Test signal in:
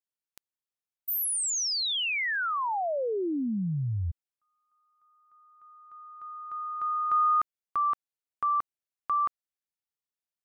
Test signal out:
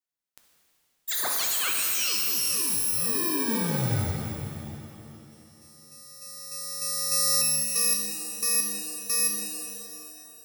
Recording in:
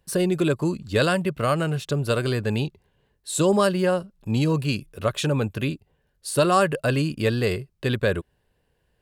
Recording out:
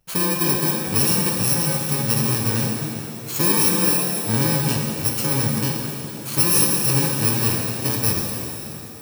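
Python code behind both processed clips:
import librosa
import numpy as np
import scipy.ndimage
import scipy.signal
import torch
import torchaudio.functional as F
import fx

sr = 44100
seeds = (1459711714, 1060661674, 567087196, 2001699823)

y = fx.bit_reversed(x, sr, seeds[0], block=64)
y = fx.rev_shimmer(y, sr, seeds[1], rt60_s=2.8, semitones=7, shimmer_db=-8, drr_db=0.5)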